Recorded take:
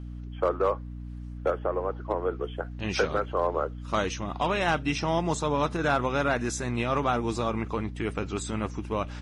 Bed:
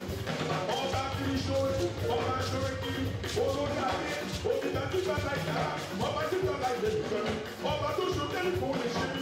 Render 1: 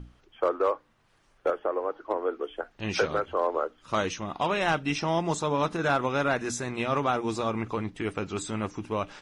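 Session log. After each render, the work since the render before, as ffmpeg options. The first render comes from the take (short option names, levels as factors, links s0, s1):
-af "bandreject=f=60:t=h:w=6,bandreject=f=120:t=h:w=6,bandreject=f=180:t=h:w=6,bandreject=f=240:t=h:w=6,bandreject=f=300:t=h:w=6"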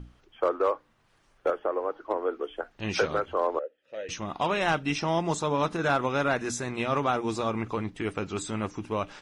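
-filter_complex "[0:a]asettb=1/sr,asplit=3[s0][s1][s2];[s0]atrim=end=3.594[s3];[s1]atrim=start=3.59:end=4.09,asetpts=PTS-STARTPTS,afade=t=in:d=0.004:c=qsin,afade=t=out:st=0.496:d=0.004:c=qsin,asplit=3[s4][s5][s6];[s4]bandpass=f=530:t=q:w=8,volume=1[s7];[s5]bandpass=f=1840:t=q:w=8,volume=0.501[s8];[s6]bandpass=f=2480:t=q:w=8,volume=0.355[s9];[s7][s8][s9]amix=inputs=3:normalize=0[s10];[s2]atrim=start=4.086[s11];[s3][s10]acrossfade=d=0.004:c1=hsin:c2=qsin[s12];[s12][s11]acrossfade=d=0.004:c1=qsin:c2=hsin"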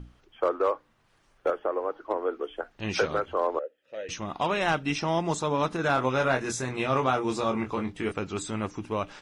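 -filter_complex "[0:a]asettb=1/sr,asplit=3[s0][s1][s2];[s0]atrim=end=5.954[s3];[s1]atrim=start=5.95:end=8.12,asetpts=PTS-STARTPTS,afade=t=in:d=0.004:c=qsin,afade=t=out:st=2.166:d=0.004:c=qsin,asplit=2[s4][s5];[s5]adelay=23,volume=0.562[s6];[s4][s6]amix=inputs=2:normalize=0,atrim=end_sample=95697[s7];[s2]atrim=start=8.116[s8];[s3][s7]acrossfade=d=0.004:c1=hsin:c2=qsin[s9];[s9][s8]acrossfade=d=0.004:c1=qsin:c2=hsin"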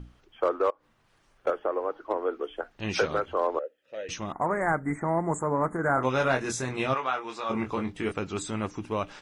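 -filter_complex "[0:a]asettb=1/sr,asplit=3[s0][s1][s2];[s0]atrim=end=0.704[s3];[s1]atrim=start=0.7:end=1.47,asetpts=PTS-STARTPTS,afade=t=in:d=0.004:c=qsin,afade=t=out:st=0.766:d=0.004:c=qsin,acompressor=threshold=0.00447:ratio=16:attack=3.2:release=140:knee=1:detection=peak[s4];[s2]atrim=start=1.466[s5];[s3][s4]acrossfade=d=0.004:c1=hsin:c2=qsin[s6];[s6][s5]acrossfade=d=0.004:c1=qsin:c2=hsin,asettb=1/sr,asplit=3[s7][s8][s9];[s7]atrim=end=4.324[s10];[s8]atrim=start=4.32:end=6.03,asetpts=PTS-STARTPTS,afade=t=in:d=0.004:c=qsin,afade=t=out:st=1.706:d=0.004:c=qsin,asuperstop=centerf=3900:order=20:qfactor=0.8[s11];[s9]atrim=start=6.026[s12];[s10][s11]acrossfade=d=0.004:c1=hsin:c2=qsin[s13];[s13][s12]acrossfade=d=0.004:c1=qsin:c2=hsin,asplit=3[s14][s15][s16];[s14]afade=t=out:st=6.93:d=0.02[s17];[s15]bandpass=f=1800:t=q:w=0.75,afade=t=in:st=6.93:d=0.02,afade=t=out:st=7.49:d=0.02[s18];[s16]afade=t=in:st=7.49:d=0.02[s19];[s17][s18][s19]amix=inputs=3:normalize=0"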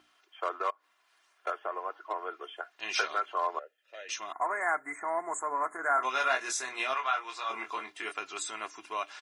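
-af "highpass=960,aecho=1:1:2.9:0.53"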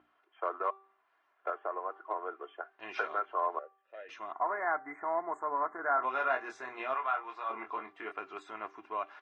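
-af "lowpass=1400,bandreject=f=388.9:t=h:w=4,bandreject=f=777.8:t=h:w=4,bandreject=f=1166.7:t=h:w=4,bandreject=f=1555.6:t=h:w=4,bandreject=f=1944.5:t=h:w=4,bandreject=f=2333.4:t=h:w=4,bandreject=f=2722.3:t=h:w=4,bandreject=f=3111.2:t=h:w=4,bandreject=f=3500.1:t=h:w=4,bandreject=f=3889:t=h:w=4,bandreject=f=4277.9:t=h:w=4,bandreject=f=4666.8:t=h:w=4,bandreject=f=5055.7:t=h:w=4,bandreject=f=5444.6:t=h:w=4,bandreject=f=5833.5:t=h:w=4,bandreject=f=6222.4:t=h:w=4,bandreject=f=6611.3:t=h:w=4,bandreject=f=7000.2:t=h:w=4,bandreject=f=7389.1:t=h:w=4,bandreject=f=7778:t=h:w=4,bandreject=f=8166.9:t=h:w=4,bandreject=f=8555.8:t=h:w=4,bandreject=f=8944.7:t=h:w=4,bandreject=f=9333.6:t=h:w=4,bandreject=f=9722.5:t=h:w=4,bandreject=f=10111.4:t=h:w=4,bandreject=f=10500.3:t=h:w=4,bandreject=f=10889.2:t=h:w=4,bandreject=f=11278.1:t=h:w=4,bandreject=f=11667:t=h:w=4,bandreject=f=12055.9:t=h:w=4"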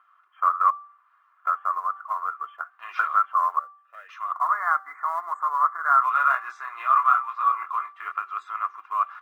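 -af "acrusher=bits=7:mode=log:mix=0:aa=0.000001,highpass=f=1200:t=q:w=12"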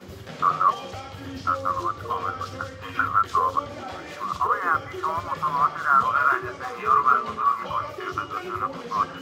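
-filter_complex "[1:a]volume=0.562[s0];[0:a][s0]amix=inputs=2:normalize=0"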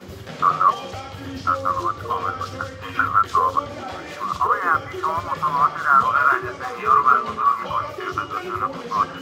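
-af "volume=1.5"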